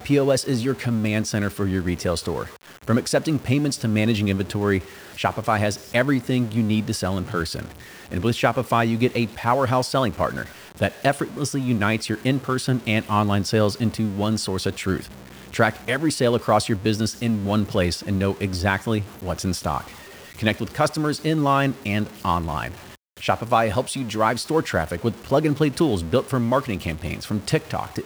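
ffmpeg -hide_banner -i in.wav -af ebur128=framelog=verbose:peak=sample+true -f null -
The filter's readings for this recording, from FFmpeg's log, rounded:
Integrated loudness:
  I:         -22.9 LUFS
  Threshold: -33.1 LUFS
Loudness range:
  LRA:         1.6 LU
  Threshold: -43.1 LUFS
  LRA low:   -23.9 LUFS
  LRA high:  -22.2 LUFS
Sample peak:
  Peak:       -3.6 dBFS
True peak:
  Peak:       -3.5 dBFS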